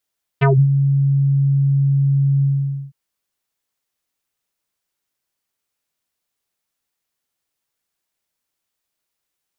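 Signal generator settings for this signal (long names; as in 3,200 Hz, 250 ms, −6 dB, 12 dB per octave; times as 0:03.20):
subtractive voice square C#3 24 dB per octave, low-pass 150 Hz, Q 2.6, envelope 4.5 octaves, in 0.17 s, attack 19 ms, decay 0.24 s, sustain −11 dB, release 0.49 s, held 2.02 s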